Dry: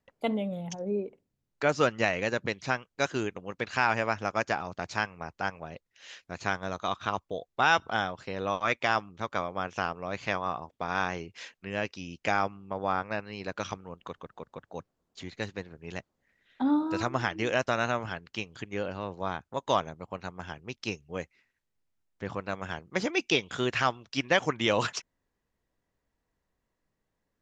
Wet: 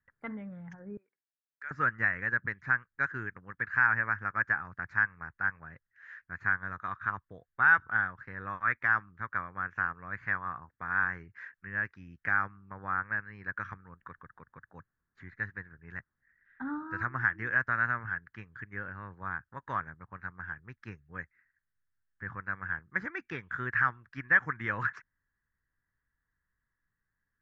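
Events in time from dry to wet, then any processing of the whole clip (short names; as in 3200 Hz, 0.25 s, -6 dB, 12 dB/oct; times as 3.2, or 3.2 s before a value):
0.97–1.71 differentiator
whole clip: EQ curve 120 Hz 0 dB, 190 Hz -6 dB, 340 Hz -11 dB, 660 Hz -17 dB, 1700 Hz +11 dB, 2900 Hz -23 dB, 5700 Hz -27 dB; gain -2.5 dB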